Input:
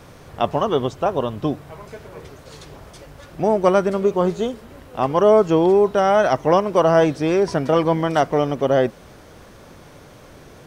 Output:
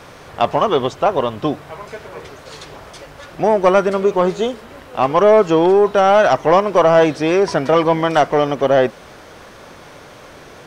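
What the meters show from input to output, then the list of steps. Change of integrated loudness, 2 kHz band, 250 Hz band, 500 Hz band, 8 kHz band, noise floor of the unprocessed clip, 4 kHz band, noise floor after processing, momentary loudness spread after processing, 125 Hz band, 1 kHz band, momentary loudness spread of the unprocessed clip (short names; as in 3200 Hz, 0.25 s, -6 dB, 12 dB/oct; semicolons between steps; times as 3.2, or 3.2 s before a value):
+3.5 dB, +6.0 dB, +1.5 dB, +3.5 dB, n/a, -45 dBFS, +5.5 dB, -40 dBFS, 17 LU, -0.5 dB, +5.0 dB, 12 LU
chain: overdrive pedal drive 9 dB, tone 4700 Hz, clips at -3 dBFS; in parallel at -5 dB: soft clip -13 dBFS, distortion -13 dB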